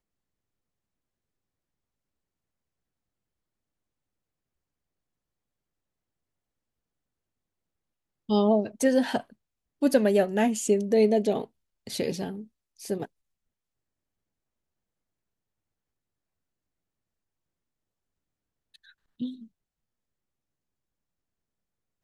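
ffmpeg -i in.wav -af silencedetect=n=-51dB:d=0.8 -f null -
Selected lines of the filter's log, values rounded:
silence_start: 0.00
silence_end: 8.29 | silence_duration: 8.29
silence_start: 13.07
silence_end: 18.74 | silence_duration: 5.68
silence_start: 19.47
silence_end: 22.03 | silence_duration: 2.56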